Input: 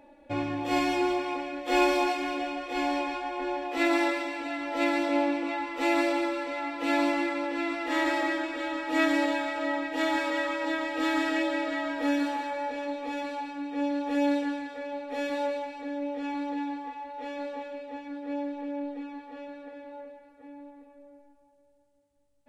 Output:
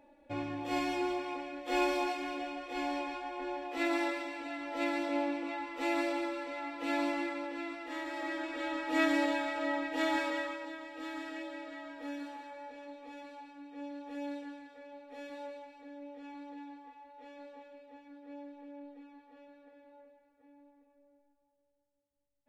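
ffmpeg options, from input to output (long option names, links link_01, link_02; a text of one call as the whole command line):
ffmpeg -i in.wav -af "volume=3dB,afade=type=out:start_time=7.25:duration=0.83:silence=0.446684,afade=type=in:start_time=8.08:duration=0.58:silence=0.316228,afade=type=out:start_time=10.2:duration=0.51:silence=0.298538" out.wav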